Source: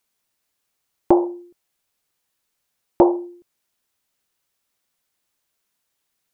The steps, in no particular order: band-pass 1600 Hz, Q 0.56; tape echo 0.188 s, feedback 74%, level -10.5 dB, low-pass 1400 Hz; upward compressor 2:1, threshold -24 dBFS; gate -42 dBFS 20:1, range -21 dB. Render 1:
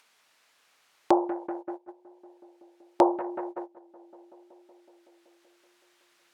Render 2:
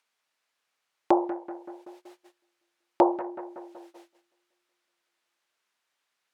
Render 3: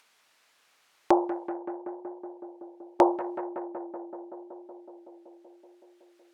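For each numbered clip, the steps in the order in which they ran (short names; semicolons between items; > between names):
tape echo > band-pass > gate > upward compressor; upward compressor > tape echo > gate > band-pass; gate > tape echo > band-pass > upward compressor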